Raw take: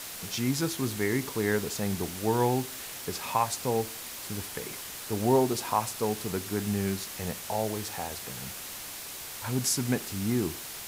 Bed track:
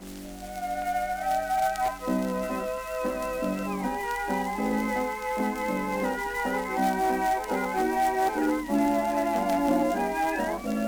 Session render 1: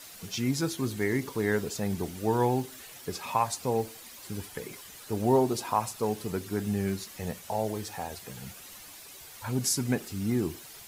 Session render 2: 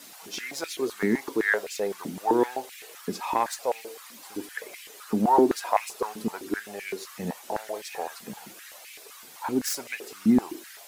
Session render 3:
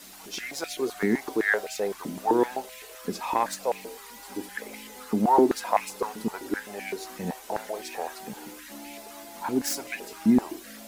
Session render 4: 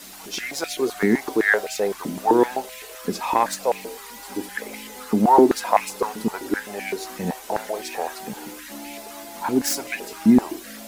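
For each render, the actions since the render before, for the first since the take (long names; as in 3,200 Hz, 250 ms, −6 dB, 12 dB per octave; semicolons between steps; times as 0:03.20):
broadband denoise 10 dB, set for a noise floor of −41 dBFS
phase distortion by the signal itself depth 0.055 ms; high-pass on a step sequencer 7.8 Hz 220–2,300 Hz
mix in bed track −20 dB
level +5.5 dB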